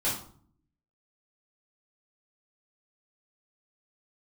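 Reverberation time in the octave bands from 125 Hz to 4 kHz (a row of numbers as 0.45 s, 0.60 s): 0.90 s, 0.85 s, 0.55 s, 0.50 s, 0.35 s, 0.35 s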